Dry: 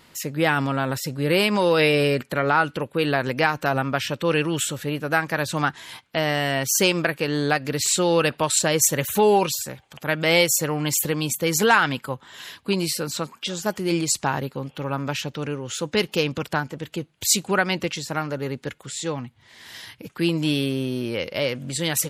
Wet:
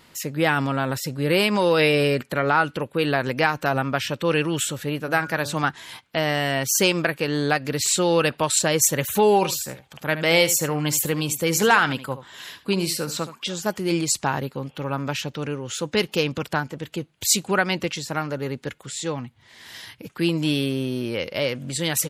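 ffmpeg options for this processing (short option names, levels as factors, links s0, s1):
-filter_complex "[0:a]asettb=1/sr,asplit=3[s0][s1][s2];[s0]atrim=end=5.024[s3];[s1]atrim=start=5.02:end=5.64,asetpts=PTS-STARTPTS,afade=t=in:d=0.004:c=qsin,afade=t=out:st=0.616:d=0.004:c=qsin,bandreject=f=144.8:t=h:w=4,bandreject=f=289.6:t=h:w=4,bandreject=f=434.4:t=h:w=4,bandreject=f=579.2:t=h:w=4,bandreject=f=724:t=h:w=4,bandreject=f=868.8:t=h:w=4,bandreject=f=1013.6:t=h:w=4,bandreject=f=1158.4:t=h:w=4,bandreject=f=1303.2:t=h:w=4,bandreject=f=1448:t=h:w=4,bandreject=f=1592.8:t=h:w=4[s4];[s2]atrim=start=5.636[s5];[s3][s4]acrossfade=d=0.004:c1=hsin:c2=qsin[s6];[s6][s5]acrossfade=d=0.004:c1=qsin:c2=hsin,asplit=3[s7][s8][s9];[s7]afade=t=out:st=9.41:d=0.02[s10];[s8]aecho=1:1:73:0.211,afade=t=in:st=9.41:d=0.02,afade=t=out:st=13.51:d=0.02[s11];[s9]afade=t=in:st=13.51:d=0.02[s12];[s10][s11][s12]amix=inputs=3:normalize=0"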